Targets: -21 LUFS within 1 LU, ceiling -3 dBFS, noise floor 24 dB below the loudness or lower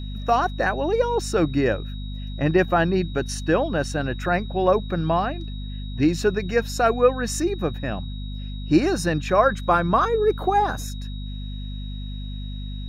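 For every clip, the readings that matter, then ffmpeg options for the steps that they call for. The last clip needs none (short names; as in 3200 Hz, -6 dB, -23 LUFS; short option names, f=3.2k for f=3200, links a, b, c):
hum 50 Hz; harmonics up to 250 Hz; hum level -29 dBFS; steady tone 3800 Hz; tone level -43 dBFS; loudness -22.5 LUFS; peak -4.5 dBFS; loudness target -21.0 LUFS
-> -af "bandreject=f=50:t=h:w=4,bandreject=f=100:t=h:w=4,bandreject=f=150:t=h:w=4,bandreject=f=200:t=h:w=4,bandreject=f=250:t=h:w=4"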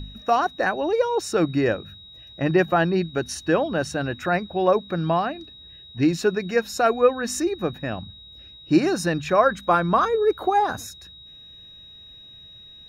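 hum none; steady tone 3800 Hz; tone level -43 dBFS
-> -af "bandreject=f=3.8k:w=30"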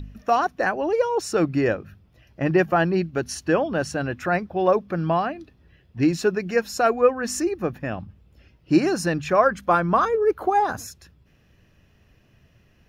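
steady tone none; loudness -22.5 LUFS; peak -5.0 dBFS; loudness target -21.0 LUFS
-> -af "volume=1.5dB"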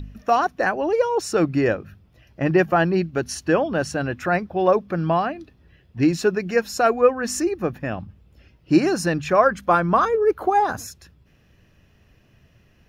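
loudness -21.0 LUFS; peak -3.5 dBFS; noise floor -58 dBFS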